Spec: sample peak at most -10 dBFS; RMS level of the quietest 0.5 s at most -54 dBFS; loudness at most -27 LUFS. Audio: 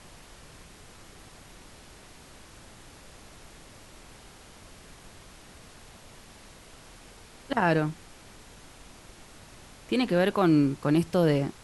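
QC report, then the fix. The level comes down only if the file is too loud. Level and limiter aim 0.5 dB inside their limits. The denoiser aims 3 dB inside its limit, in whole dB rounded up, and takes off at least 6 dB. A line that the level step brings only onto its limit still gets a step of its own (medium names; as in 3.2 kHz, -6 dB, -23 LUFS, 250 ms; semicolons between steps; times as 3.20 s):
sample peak -12.0 dBFS: pass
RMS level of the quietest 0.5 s -50 dBFS: fail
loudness -25.5 LUFS: fail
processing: noise reduction 6 dB, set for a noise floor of -50 dBFS; trim -2 dB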